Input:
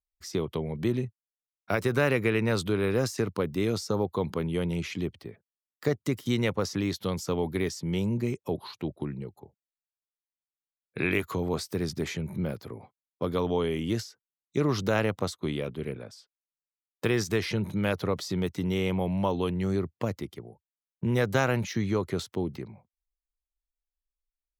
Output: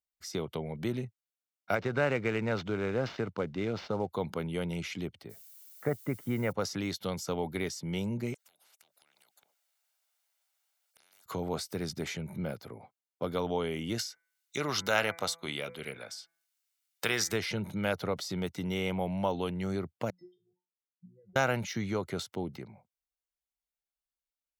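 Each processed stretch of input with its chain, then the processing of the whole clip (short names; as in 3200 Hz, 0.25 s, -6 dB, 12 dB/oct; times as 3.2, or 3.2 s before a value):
1.75–4.09 sample-rate reducer 10000 Hz, jitter 20% + air absorption 200 m
5.29–6.51 LPF 2000 Hz 24 dB/oct + low shelf 66 Hz +6.5 dB + added noise violet -52 dBFS
8.34–11.26 HPF 560 Hz 24 dB/oct + compressor 2.5:1, threshold -56 dBFS + spectral compressor 10:1
13.98–17.33 tilt shelf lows -6.5 dB, about 700 Hz + de-hum 167 Hz, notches 14 + mismatched tape noise reduction encoder only
20.1–21.36 spectral contrast raised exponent 3.8 + level quantiser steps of 18 dB + resonator 180 Hz, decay 0.27 s, mix 100%
whole clip: HPF 200 Hz 6 dB/oct; comb 1.4 ms, depth 31%; gain -2 dB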